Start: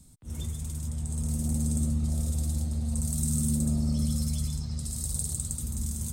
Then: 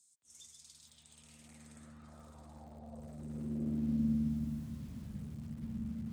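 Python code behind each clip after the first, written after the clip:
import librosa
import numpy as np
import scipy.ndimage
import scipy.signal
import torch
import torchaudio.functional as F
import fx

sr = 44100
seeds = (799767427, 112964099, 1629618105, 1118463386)

y = fx.high_shelf(x, sr, hz=4200.0, db=-6.5)
y = fx.filter_sweep_bandpass(y, sr, from_hz=6900.0, to_hz=210.0, start_s=0.25, end_s=4.21, q=2.6)
y = fx.echo_crushed(y, sr, ms=475, feedback_pct=35, bits=9, wet_db=-10.0)
y = y * 10.0 ** (1.5 / 20.0)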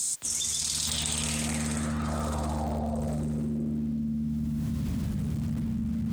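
y = fx.env_flatten(x, sr, amount_pct=100)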